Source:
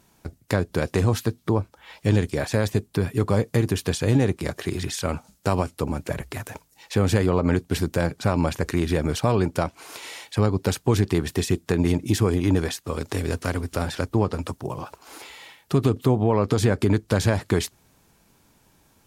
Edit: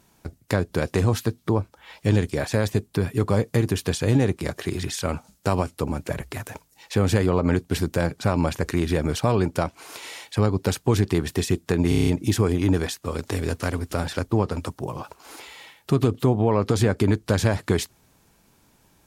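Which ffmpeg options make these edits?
-filter_complex "[0:a]asplit=7[a][b][c][d][e][f][g];[a]atrim=end=11.922[h];[b]atrim=start=11.888:end=11.922[i];[c]atrim=start=11.888:end=11.922[j];[d]atrim=start=11.888:end=11.922[k];[e]atrim=start=11.888:end=11.922[l];[f]atrim=start=11.888:end=11.922[m];[g]atrim=start=11.888[n];[h][i]acrossfade=d=0.004:c1=hsin:c2=hsin[o];[o][j]acrossfade=d=0.004:c1=hsin:c2=hsin[p];[p][k]acrossfade=d=0.004:c1=hsin:c2=hsin[q];[q][l]acrossfade=d=0.004:c1=hsin:c2=hsin[r];[r][m]acrossfade=d=0.004:c1=hsin:c2=hsin[s];[s][n]acrossfade=d=0.004:c1=hsin:c2=hsin"

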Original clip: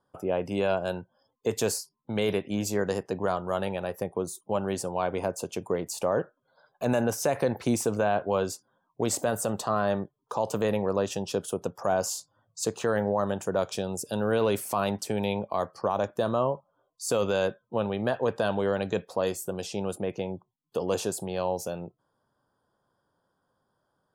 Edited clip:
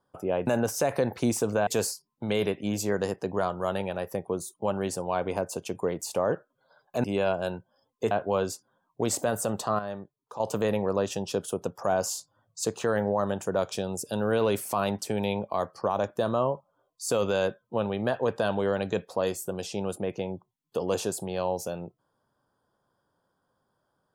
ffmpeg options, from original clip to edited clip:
-filter_complex "[0:a]asplit=7[a][b][c][d][e][f][g];[a]atrim=end=0.472[h];[b]atrim=start=6.908:end=8.112[i];[c]atrim=start=1.538:end=6.912[j];[d]atrim=start=0.468:end=1.542[k];[e]atrim=start=8.108:end=9.792[l];[f]atrim=start=9.788:end=10.402,asetpts=PTS-STARTPTS,volume=-9dB[m];[g]atrim=start=10.398[n];[h][i]acrossfade=d=0.004:c1=hsin:c2=hsin[o];[o][j]acrossfade=d=0.004:c1=hsin:c2=hsin[p];[p][k]acrossfade=d=0.004:c1=hsin:c2=hsin[q];[q][l]acrossfade=d=0.004:c1=hsin:c2=hsin[r];[r][m]acrossfade=d=0.004:c1=hsin:c2=hsin[s];[s][n]acrossfade=d=0.004:c1=hsin:c2=hsin"

